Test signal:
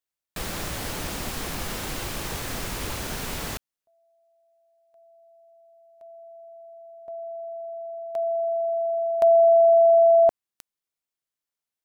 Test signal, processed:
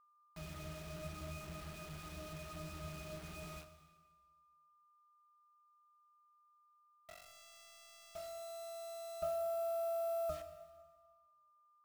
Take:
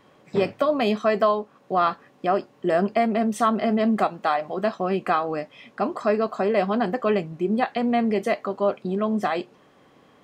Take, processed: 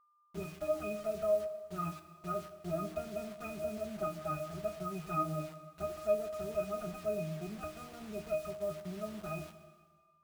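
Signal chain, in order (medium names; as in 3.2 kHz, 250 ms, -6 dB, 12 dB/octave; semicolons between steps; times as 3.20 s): comb filter that takes the minimum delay 4.8 ms; pitch-class resonator D#, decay 0.34 s; bit crusher 9-bit; whistle 1.2 kHz -69 dBFS; plate-style reverb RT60 1.5 s, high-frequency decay 1×, DRR 9 dB; trim +1.5 dB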